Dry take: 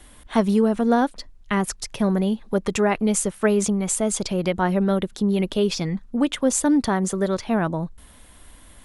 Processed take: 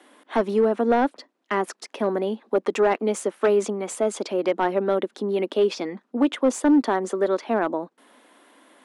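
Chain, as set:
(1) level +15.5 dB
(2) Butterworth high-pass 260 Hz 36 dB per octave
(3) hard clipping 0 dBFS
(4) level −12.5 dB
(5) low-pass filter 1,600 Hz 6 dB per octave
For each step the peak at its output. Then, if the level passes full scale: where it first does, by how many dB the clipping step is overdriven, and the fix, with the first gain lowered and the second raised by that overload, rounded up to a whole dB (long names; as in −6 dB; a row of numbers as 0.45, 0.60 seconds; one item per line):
+9.5, +9.0, 0.0, −12.5, −12.5 dBFS
step 1, 9.0 dB
step 1 +6.5 dB, step 4 −3.5 dB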